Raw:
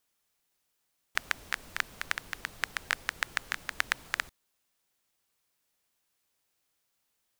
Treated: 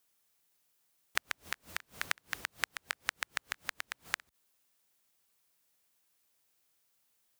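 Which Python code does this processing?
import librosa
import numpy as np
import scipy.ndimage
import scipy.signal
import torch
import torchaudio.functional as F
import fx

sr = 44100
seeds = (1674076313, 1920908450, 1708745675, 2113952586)

y = fx.high_shelf(x, sr, hz=8800.0, db=5.5)
y = fx.gate_flip(y, sr, shuts_db=-11.0, range_db=-25)
y = scipy.signal.sosfilt(scipy.signal.butter(2, 57.0, 'highpass', fs=sr, output='sos'), y)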